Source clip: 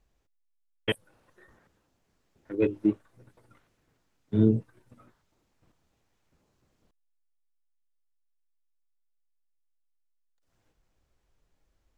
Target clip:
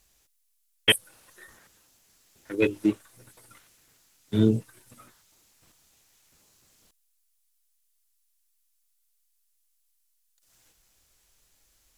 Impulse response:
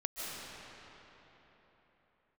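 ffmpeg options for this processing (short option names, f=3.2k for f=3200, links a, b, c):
-filter_complex "[1:a]atrim=start_sample=2205,atrim=end_sample=4410,asetrate=25578,aresample=44100[a];[0:a][a]afir=irnorm=-1:irlink=0,crystalizer=i=10:c=0"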